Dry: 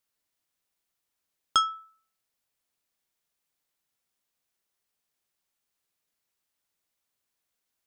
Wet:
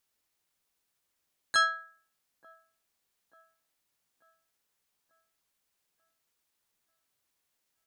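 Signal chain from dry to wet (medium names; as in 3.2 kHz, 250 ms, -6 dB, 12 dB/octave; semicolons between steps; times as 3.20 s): peak limiter -19 dBFS, peak gain reduction 9.5 dB; harmony voices -12 st -15 dB, +4 st 0 dB; on a send: feedback echo behind a band-pass 888 ms, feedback 51%, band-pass 400 Hz, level -18 dB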